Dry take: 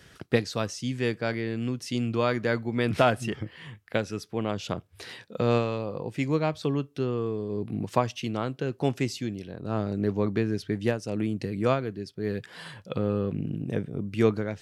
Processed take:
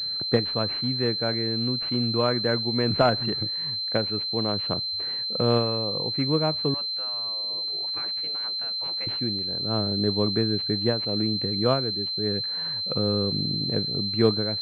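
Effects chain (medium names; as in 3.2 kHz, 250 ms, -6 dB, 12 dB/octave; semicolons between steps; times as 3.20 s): 6.74–9.07 s: spectral gate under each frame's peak -15 dB weak; class-D stage that switches slowly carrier 4.1 kHz; trim +1.5 dB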